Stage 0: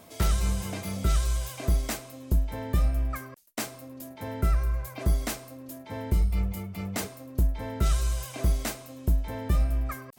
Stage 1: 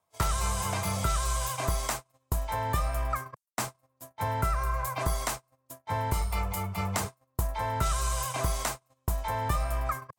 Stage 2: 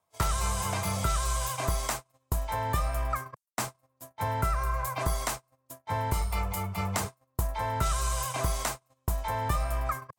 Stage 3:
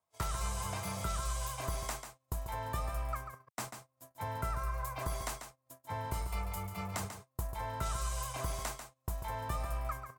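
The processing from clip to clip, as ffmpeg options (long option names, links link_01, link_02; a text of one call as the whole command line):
ffmpeg -i in.wav -filter_complex "[0:a]equalizer=frequency=125:width_type=o:width=1:gain=5,equalizer=frequency=250:width_type=o:width=1:gain=-11,equalizer=frequency=1000:width_type=o:width=1:gain=12,equalizer=frequency=8000:width_type=o:width=1:gain=5,acrossover=split=290|670[link_01][link_02][link_03];[link_01]acompressor=threshold=-36dB:ratio=4[link_04];[link_02]acompressor=threshold=-49dB:ratio=4[link_05];[link_03]acompressor=threshold=-37dB:ratio=4[link_06];[link_04][link_05][link_06]amix=inputs=3:normalize=0,agate=range=-36dB:threshold=-39dB:ratio=16:detection=peak,volume=6dB" out.wav
ffmpeg -i in.wav -af anull out.wav
ffmpeg -i in.wav -af "aecho=1:1:142:0.376,volume=-8.5dB" out.wav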